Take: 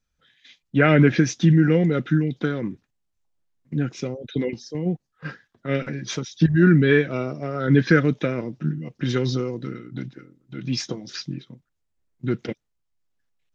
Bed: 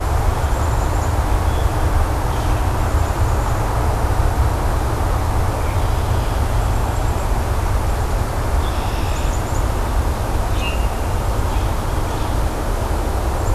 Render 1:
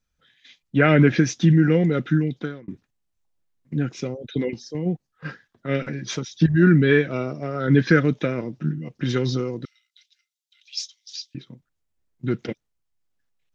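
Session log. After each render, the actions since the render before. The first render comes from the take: 2.27–2.68 s: fade out; 9.65–11.35 s: inverse Chebyshev high-pass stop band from 550 Hz, stop band 80 dB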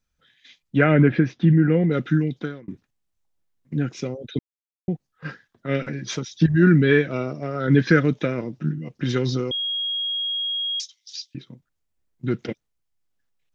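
0.84–1.91 s: distance through air 370 m; 4.39–4.88 s: mute; 9.51–10.80 s: bleep 3.28 kHz -23 dBFS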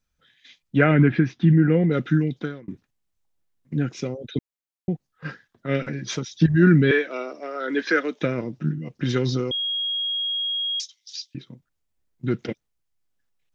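0.91–1.51 s: peaking EQ 530 Hz -9.5 dB 0.48 oct; 6.91–8.21 s: Bessel high-pass 450 Hz, order 8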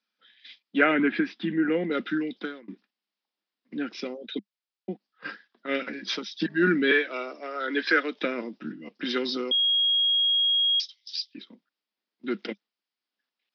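Chebyshev band-pass 200–5100 Hz, order 5; tilt shelf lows -4.5 dB, about 1.3 kHz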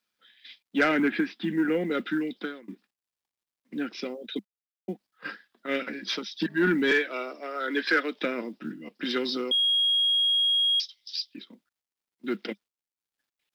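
companded quantiser 8-bit; saturation -14 dBFS, distortion -21 dB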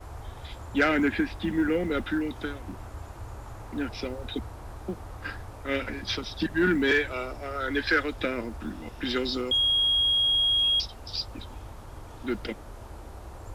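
add bed -23 dB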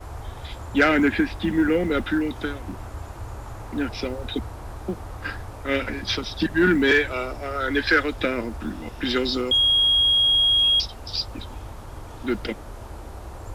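trim +5 dB

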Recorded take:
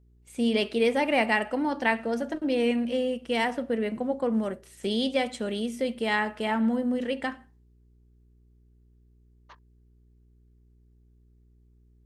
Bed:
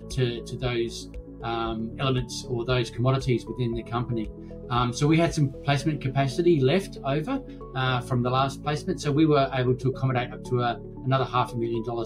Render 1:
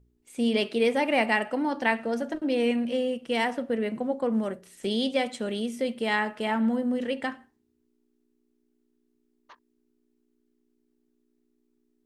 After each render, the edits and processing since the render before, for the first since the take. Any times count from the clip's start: de-hum 60 Hz, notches 3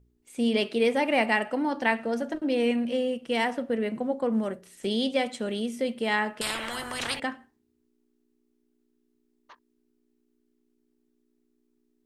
6.41–7.20 s: spectrum-flattening compressor 10:1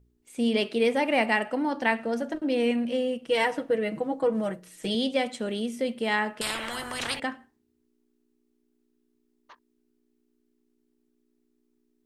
3.28–4.95 s: comb 6.3 ms, depth 84%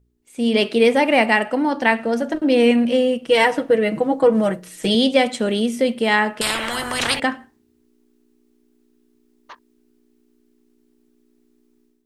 level rider gain up to 11 dB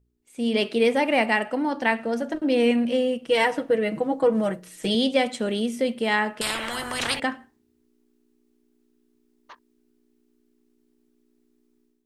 trim -5.5 dB

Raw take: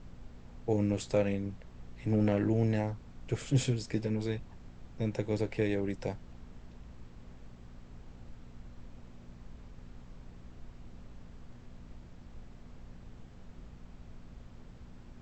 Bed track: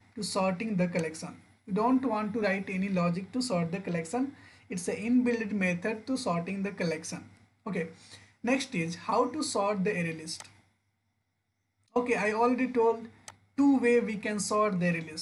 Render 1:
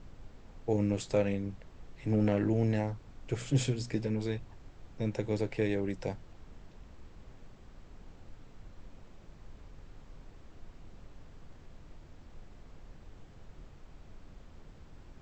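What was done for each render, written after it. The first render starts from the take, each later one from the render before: de-hum 60 Hz, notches 4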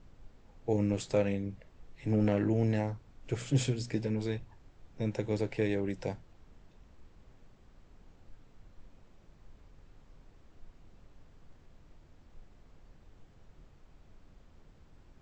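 noise print and reduce 6 dB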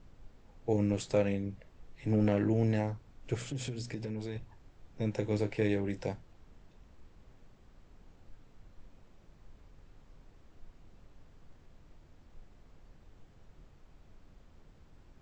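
3.46–4.36 s: compression 5:1, threshold -34 dBFS; 5.12–6.06 s: doubling 29 ms -10.5 dB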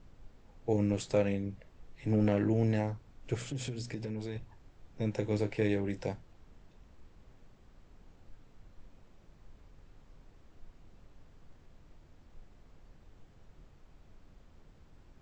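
no audible change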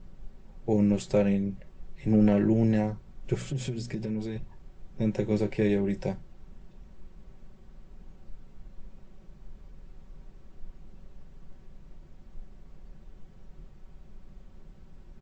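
bass shelf 400 Hz +7.5 dB; comb 5.3 ms, depth 55%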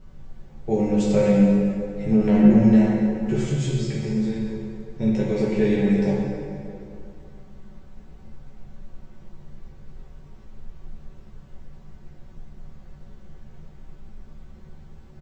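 doubling 14 ms -3 dB; plate-style reverb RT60 2.6 s, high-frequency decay 0.65×, DRR -3.5 dB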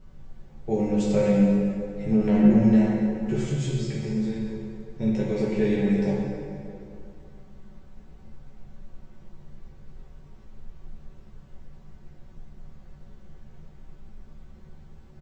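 trim -3 dB

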